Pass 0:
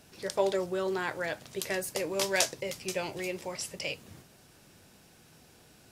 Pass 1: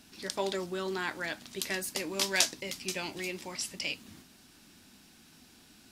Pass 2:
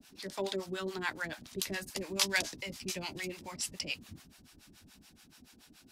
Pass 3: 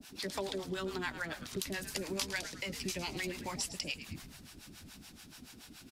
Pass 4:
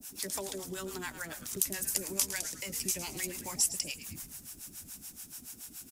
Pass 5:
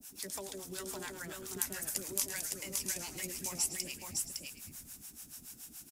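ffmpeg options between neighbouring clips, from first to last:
-af "equalizer=f=125:t=o:w=1:g=-10,equalizer=f=250:t=o:w=1:g=9,equalizer=f=500:t=o:w=1:g=-11,equalizer=f=4k:t=o:w=1:g=4"
-filter_complex "[0:a]acrossover=split=140|630|2500[a][b][c][d];[a]dynaudnorm=f=230:g=9:m=8dB[e];[e][b][c][d]amix=inputs=4:normalize=0,acrossover=split=570[f][g];[f]aeval=exprs='val(0)*(1-1/2+1/2*cos(2*PI*7*n/s))':c=same[h];[g]aeval=exprs='val(0)*(1-1/2-1/2*cos(2*PI*7*n/s))':c=same[i];[h][i]amix=inputs=2:normalize=0,volume=2dB"
-filter_complex "[0:a]acompressor=threshold=-41dB:ratio=5,asplit=6[a][b][c][d][e][f];[b]adelay=108,afreqshift=-120,volume=-12dB[g];[c]adelay=216,afreqshift=-240,volume=-18.7dB[h];[d]adelay=324,afreqshift=-360,volume=-25.5dB[i];[e]adelay=432,afreqshift=-480,volume=-32.2dB[j];[f]adelay=540,afreqshift=-600,volume=-39dB[k];[a][g][h][i][j][k]amix=inputs=6:normalize=0,volume=6dB"
-af "aexciter=amount=6.9:drive=3:freq=5.9k,volume=-2.5dB"
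-af "aecho=1:1:559:0.708,volume=-5dB"

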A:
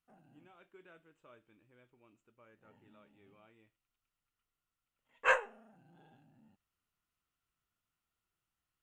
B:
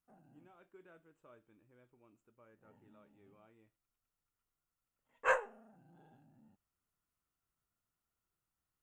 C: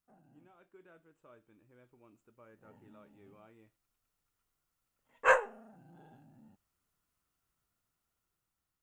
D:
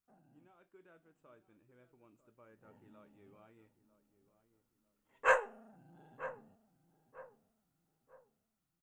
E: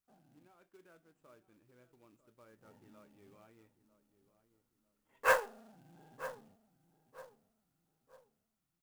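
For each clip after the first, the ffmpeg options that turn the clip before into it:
-af "equalizer=f=3k:w=0.84:g=-8.5"
-af "dynaudnorm=f=670:g=5:m=6dB"
-filter_complex "[0:a]asplit=2[a][b];[b]adelay=946,lowpass=f=1k:p=1,volume=-12.5dB,asplit=2[c][d];[d]adelay=946,lowpass=f=1k:p=1,volume=0.4,asplit=2[e][f];[f]adelay=946,lowpass=f=1k:p=1,volume=0.4,asplit=2[g][h];[h]adelay=946,lowpass=f=1k:p=1,volume=0.4[i];[a][c][e][g][i]amix=inputs=5:normalize=0,volume=-3dB"
-af "acrusher=bits=3:mode=log:mix=0:aa=0.000001"

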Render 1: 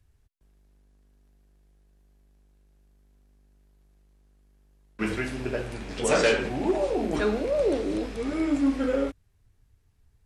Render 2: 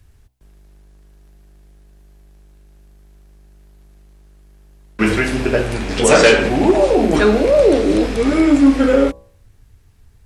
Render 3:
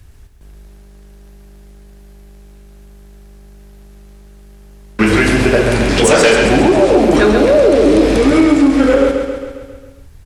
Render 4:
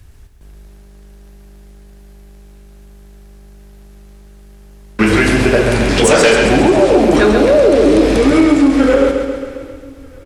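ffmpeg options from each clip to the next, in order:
-filter_complex "[0:a]bandreject=f=62.58:t=h:w=4,bandreject=f=125.16:t=h:w=4,bandreject=f=187.74:t=h:w=4,bandreject=f=250.32:t=h:w=4,bandreject=f=312.9:t=h:w=4,bandreject=f=375.48:t=h:w=4,bandreject=f=438.06:t=h:w=4,bandreject=f=500.64:t=h:w=4,bandreject=f=563.22:t=h:w=4,bandreject=f=625.8:t=h:w=4,bandreject=f=688.38:t=h:w=4,bandreject=f=750.96:t=h:w=4,bandreject=f=813.54:t=h:w=4,bandreject=f=876.12:t=h:w=4,bandreject=f=938.7:t=h:w=4,bandreject=f=1.00128k:t=h:w=4,bandreject=f=1.06386k:t=h:w=4,bandreject=f=1.12644k:t=h:w=4,asplit=2[a][b];[b]alimiter=limit=-20.5dB:level=0:latency=1:release=229,volume=0dB[c];[a][c]amix=inputs=2:normalize=0,volume=8.5dB"
-filter_complex "[0:a]acompressor=threshold=-14dB:ratio=10,asplit=2[a][b];[b]aecho=0:1:135|270|405|540|675|810|945:0.447|0.259|0.15|0.0872|0.0505|0.0293|0.017[c];[a][c]amix=inputs=2:normalize=0,acontrast=87,volume=1dB"
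-af "aecho=1:1:616|1232|1848:0.075|0.0322|0.0139"

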